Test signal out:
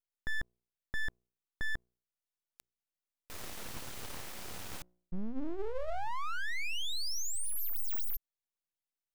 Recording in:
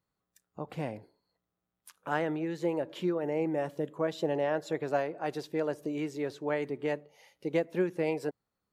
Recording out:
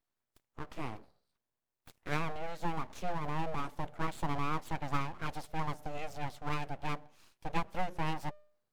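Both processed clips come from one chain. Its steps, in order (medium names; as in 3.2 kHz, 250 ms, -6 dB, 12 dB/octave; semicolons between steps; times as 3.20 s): de-hum 60.2 Hz, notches 5; full-wave rectifier; trim -1.5 dB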